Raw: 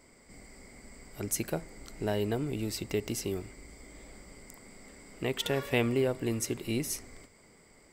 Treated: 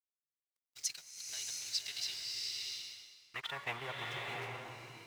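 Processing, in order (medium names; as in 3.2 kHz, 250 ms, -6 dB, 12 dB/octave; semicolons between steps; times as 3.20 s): band-stop 870 Hz, Q 22; gate -46 dBFS, range -24 dB; graphic EQ 125/250/500/2000/4000/8000 Hz +10/-10/-8/+7/+12/-3 dB; in parallel at 0 dB: compression 16:1, threshold -41 dBFS, peak gain reduction 24 dB; on the sum: companded quantiser 4-bit; band-pass sweep 5.7 kHz -> 910 Hz, 2.71–5.70 s; time stretch by phase-locked vocoder 0.64×; crossover distortion -55 dBFS; swelling reverb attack 700 ms, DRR -0.5 dB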